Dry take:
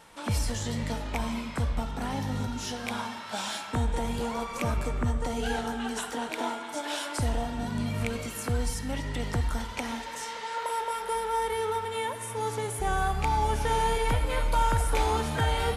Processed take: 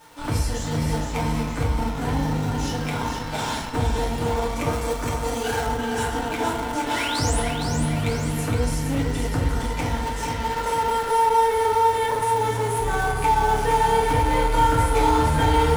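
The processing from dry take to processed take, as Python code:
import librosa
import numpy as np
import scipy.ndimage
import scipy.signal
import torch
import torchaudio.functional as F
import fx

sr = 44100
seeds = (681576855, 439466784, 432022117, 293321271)

p1 = fx.spec_paint(x, sr, seeds[0], shape='rise', start_s=6.94, length_s=0.46, low_hz=1800.0, high_hz=11000.0, level_db=-33.0)
p2 = p1 + fx.echo_feedback(p1, sr, ms=465, feedback_pct=51, wet_db=-5.5, dry=0)
p3 = fx.dmg_crackle(p2, sr, seeds[1], per_s=590.0, level_db=-43.0)
p4 = fx.rev_fdn(p3, sr, rt60_s=0.68, lf_ratio=0.8, hf_ratio=0.55, size_ms=20.0, drr_db=-5.5)
p5 = fx.schmitt(p4, sr, flips_db=-23.0)
p6 = p4 + (p5 * 10.0 ** (-11.0 / 20.0))
p7 = fx.bass_treble(p6, sr, bass_db=-6, treble_db=6, at=(4.73, 5.67))
y = p7 * 10.0 ** (-3.0 / 20.0)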